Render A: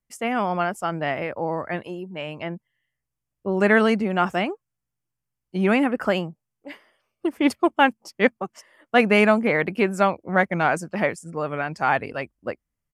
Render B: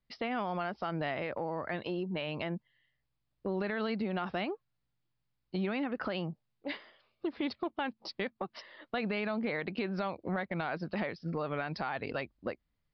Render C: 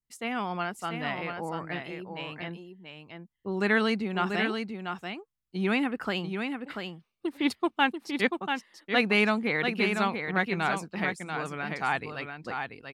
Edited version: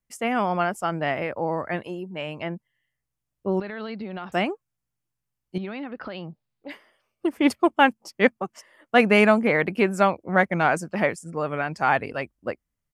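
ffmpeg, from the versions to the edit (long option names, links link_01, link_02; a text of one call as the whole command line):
ffmpeg -i take0.wav -i take1.wav -filter_complex "[1:a]asplit=2[link_01][link_02];[0:a]asplit=3[link_03][link_04][link_05];[link_03]atrim=end=3.602[link_06];[link_01]atrim=start=3.598:end=4.322[link_07];[link_04]atrim=start=4.318:end=5.582[link_08];[link_02]atrim=start=5.578:end=6.702[link_09];[link_05]atrim=start=6.698[link_10];[link_06][link_07]acrossfade=duration=0.004:curve1=hsin:curve2=hsin[link_11];[link_11][link_08]acrossfade=duration=0.004:curve1=hsin:curve2=hsin[link_12];[link_12][link_09]acrossfade=duration=0.004:curve1=hsin:curve2=hsin[link_13];[link_13][link_10]acrossfade=duration=0.004:curve1=hsin:curve2=hsin" out.wav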